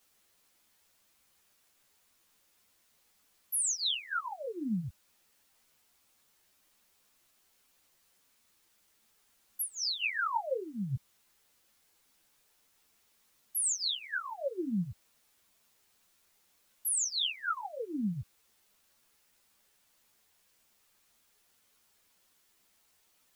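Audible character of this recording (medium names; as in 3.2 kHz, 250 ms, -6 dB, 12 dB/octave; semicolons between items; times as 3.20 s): phasing stages 4, 2.4 Hz, lowest notch 310–1500 Hz; a quantiser's noise floor 12-bit, dither triangular; a shimmering, thickened sound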